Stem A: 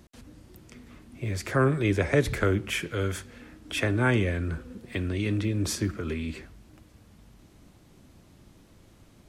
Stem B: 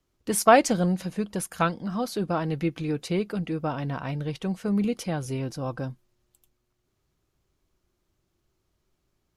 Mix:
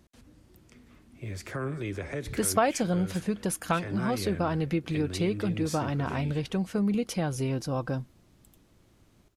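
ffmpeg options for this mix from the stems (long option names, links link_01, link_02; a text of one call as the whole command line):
ffmpeg -i stem1.wav -i stem2.wav -filter_complex "[0:a]alimiter=limit=-17.5dB:level=0:latency=1:release=107,volume=-6.5dB,asplit=2[link_01][link_02];[link_02]volume=-22dB[link_03];[1:a]adelay=2100,volume=2dB[link_04];[link_03]aecho=0:1:390:1[link_05];[link_01][link_04][link_05]amix=inputs=3:normalize=0,acompressor=threshold=-25dB:ratio=2.5" out.wav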